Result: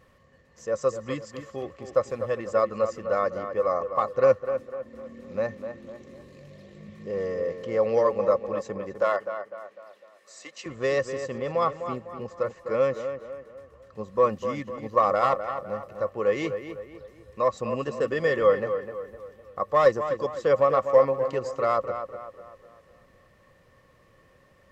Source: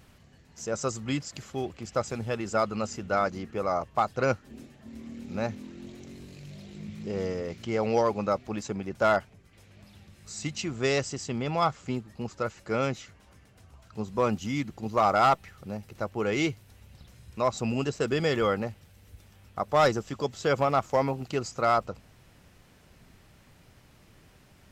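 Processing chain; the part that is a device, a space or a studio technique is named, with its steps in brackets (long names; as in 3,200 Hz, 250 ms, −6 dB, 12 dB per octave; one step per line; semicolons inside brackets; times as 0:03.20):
inside a helmet (high-shelf EQ 4,900 Hz −4.5 dB; hollow resonant body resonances 530/1,100/1,800 Hz, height 17 dB, ringing for 45 ms)
0:09.01–0:10.66: Bessel high-pass filter 500 Hz, order 4
tape delay 252 ms, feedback 47%, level −8 dB, low-pass 2,300 Hz
level −6 dB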